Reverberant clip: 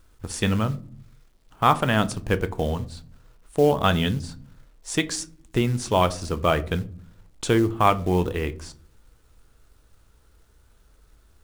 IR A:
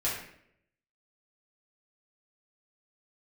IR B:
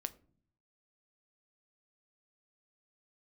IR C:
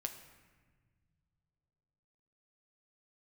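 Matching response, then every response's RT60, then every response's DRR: B; 0.70 s, no single decay rate, 1.5 s; -8.5 dB, 11.0 dB, 5.0 dB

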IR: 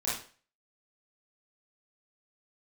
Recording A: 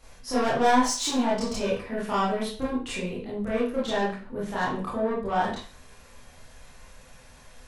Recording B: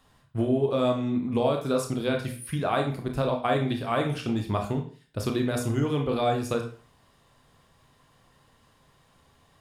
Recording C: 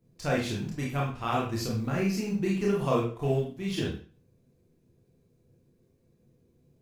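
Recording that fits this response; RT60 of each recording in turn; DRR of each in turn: A; 0.40 s, 0.40 s, 0.40 s; -9.0 dB, 3.0 dB, -4.0 dB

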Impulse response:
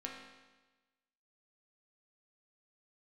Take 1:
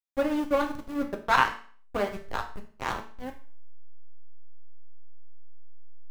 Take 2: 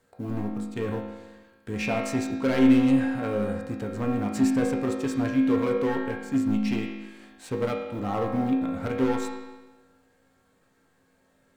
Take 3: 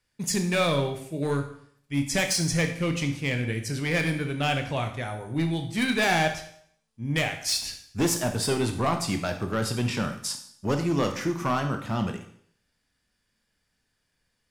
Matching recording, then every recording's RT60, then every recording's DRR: 2; 0.45 s, 1.2 s, 0.65 s; 2.5 dB, -2.0 dB, 5.5 dB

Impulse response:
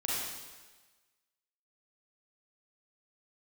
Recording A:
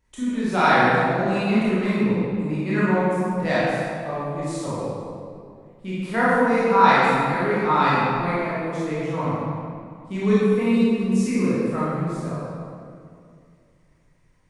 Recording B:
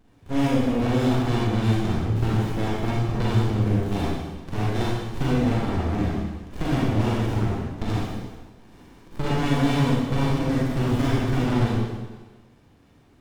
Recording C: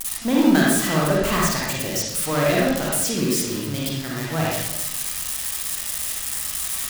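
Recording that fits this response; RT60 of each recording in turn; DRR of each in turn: B; 2.3 s, 1.3 s, 0.95 s; -10.0 dB, -6.5 dB, -5.0 dB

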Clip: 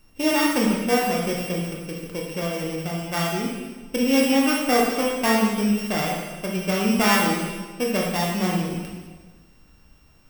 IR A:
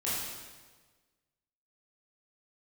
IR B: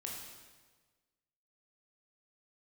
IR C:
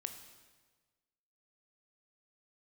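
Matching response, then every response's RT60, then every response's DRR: B; 1.4 s, 1.4 s, 1.4 s; -9.5 dB, -2.0 dB, 6.5 dB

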